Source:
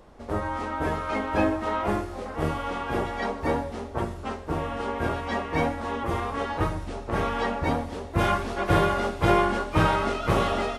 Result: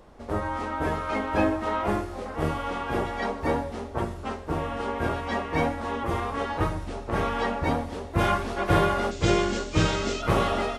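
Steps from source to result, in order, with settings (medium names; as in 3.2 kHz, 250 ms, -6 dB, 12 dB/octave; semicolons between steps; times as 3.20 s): 9.11–10.22 s: FFT filter 470 Hz 0 dB, 890 Hz -10 dB, 7.3 kHz +12 dB, 11 kHz -20 dB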